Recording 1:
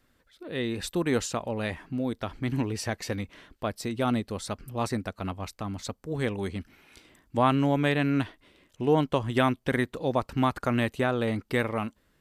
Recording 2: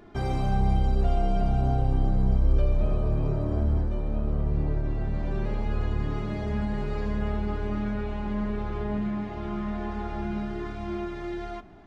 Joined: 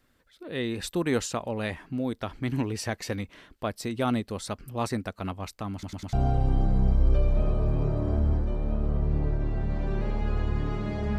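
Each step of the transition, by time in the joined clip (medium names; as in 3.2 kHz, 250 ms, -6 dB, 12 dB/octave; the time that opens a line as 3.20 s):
recording 1
5.73 s: stutter in place 0.10 s, 4 plays
6.13 s: go over to recording 2 from 1.57 s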